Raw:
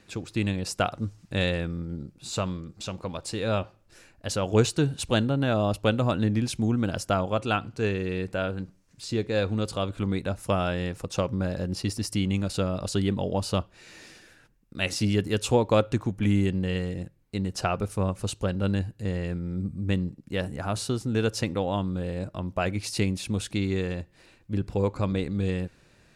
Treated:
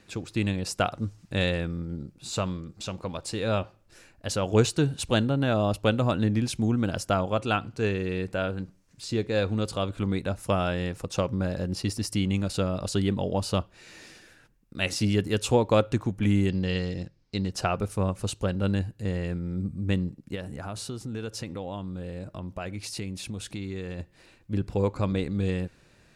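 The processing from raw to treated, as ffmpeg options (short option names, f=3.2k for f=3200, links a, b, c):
-filter_complex "[0:a]asettb=1/sr,asplit=3[a][b][c];[a]atrim=end=16.494[d];[b]atrim=start=16.49:end=17.52,asetpts=PTS-STARTPTS,afade=t=in:d=0.004:c=qsin,afade=t=out:st=1.026:d=0.004:c=qsin,lowpass=f=5.1k:t=q:w=4.2[e];[c]atrim=start=17.516[f];[d][e]acrossfade=d=0.004:c1=hsin:c2=qsin[g];[g][f]acrossfade=d=0.004:c1=qsin:c2=hsin,asplit=3[h][i][j];[h]afade=t=out:st=20.34:d=0.02[k];[i]acompressor=threshold=-34dB:ratio=2.5:attack=3.2:release=140:knee=1:detection=peak,afade=t=in:st=20.34:d=0.02,afade=t=out:st=23.98:d=0.02[l];[j]afade=t=in:st=23.98:d=0.02[m];[k][l][m]amix=inputs=3:normalize=0"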